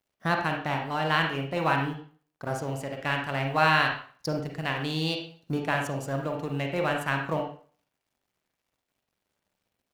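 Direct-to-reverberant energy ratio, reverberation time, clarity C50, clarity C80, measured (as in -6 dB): 2.0 dB, 0.45 s, 5.0 dB, 9.5 dB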